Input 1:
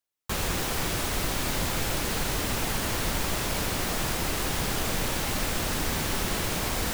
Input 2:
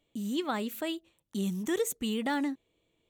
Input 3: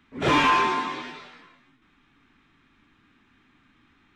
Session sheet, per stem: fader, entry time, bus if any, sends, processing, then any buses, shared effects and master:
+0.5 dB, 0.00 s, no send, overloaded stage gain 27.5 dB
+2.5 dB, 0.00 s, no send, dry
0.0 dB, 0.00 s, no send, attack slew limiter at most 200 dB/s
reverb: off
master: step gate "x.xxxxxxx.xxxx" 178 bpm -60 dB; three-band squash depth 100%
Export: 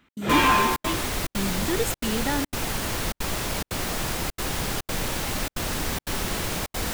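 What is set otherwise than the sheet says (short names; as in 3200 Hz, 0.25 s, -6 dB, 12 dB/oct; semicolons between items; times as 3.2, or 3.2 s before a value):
stem 1: missing overloaded stage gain 27.5 dB; master: missing three-band squash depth 100%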